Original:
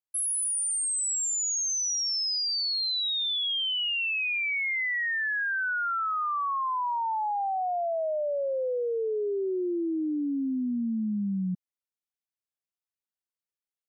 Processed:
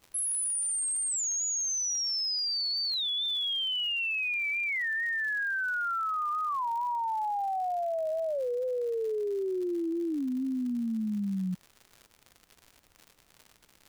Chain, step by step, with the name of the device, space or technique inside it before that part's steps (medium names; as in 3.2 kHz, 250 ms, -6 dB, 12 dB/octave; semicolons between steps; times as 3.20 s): warped LP (warped record 33 1/3 rpm, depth 160 cents; crackle 130 per s -38 dBFS; pink noise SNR 37 dB); trim -2 dB